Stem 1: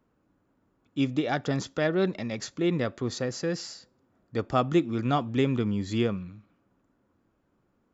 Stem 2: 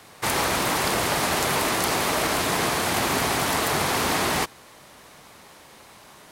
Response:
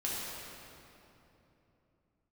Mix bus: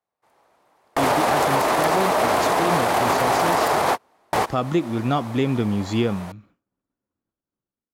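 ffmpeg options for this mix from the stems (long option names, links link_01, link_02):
-filter_complex "[0:a]agate=range=-33dB:threshold=-55dB:ratio=3:detection=peak,dynaudnorm=framelen=340:gausssize=5:maxgain=12dB,volume=-4dB,asplit=2[link_01][link_02];[1:a]equalizer=frequency=710:width=0.59:gain=14,volume=1dB[link_03];[link_02]apad=whole_len=278642[link_04];[link_03][link_04]sidechaingate=range=-48dB:threshold=-55dB:ratio=16:detection=peak[link_05];[link_01][link_05]amix=inputs=2:normalize=0,alimiter=limit=-10.5dB:level=0:latency=1:release=77"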